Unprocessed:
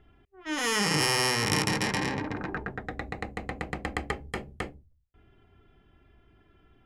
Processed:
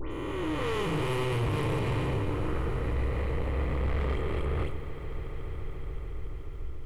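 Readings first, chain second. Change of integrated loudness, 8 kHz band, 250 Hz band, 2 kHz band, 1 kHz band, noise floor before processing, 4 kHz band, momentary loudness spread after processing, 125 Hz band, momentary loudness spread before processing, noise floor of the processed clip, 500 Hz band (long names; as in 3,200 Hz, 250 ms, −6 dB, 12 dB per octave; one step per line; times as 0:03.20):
−3.0 dB, −18.5 dB, −0.5 dB, −8.5 dB, −3.5 dB, −64 dBFS, −11.5 dB, 11 LU, +6.5 dB, 15 LU, −37 dBFS, +3.0 dB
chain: peak hold with a rise ahead of every peak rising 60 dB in 1.93 s
spectral tilt −4 dB per octave
in parallel at +0.5 dB: downward compressor, threshold −34 dBFS, peak gain reduction 19 dB
on the sum: phaser with its sweep stopped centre 1,100 Hz, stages 8
all-pass dispersion highs, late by 120 ms, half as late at 2,700 Hz
soft clipping −24.5 dBFS, distortion −9 dB
on a send: echo that builds up and dies away 143 ms, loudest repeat 5, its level −18 dB
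on the sum: feedback echo at a low word length 92 ms, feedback 35%, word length 9 bits, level −14 dB
level −1.5 dB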